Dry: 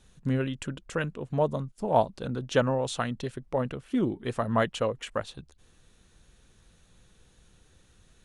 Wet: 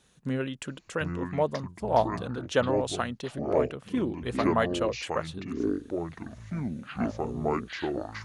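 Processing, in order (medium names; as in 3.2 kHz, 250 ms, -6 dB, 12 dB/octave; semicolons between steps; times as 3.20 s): ever faster or slower copies 618 ms, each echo -7 st, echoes 2; high-pass 210 Hz 6 dB/octave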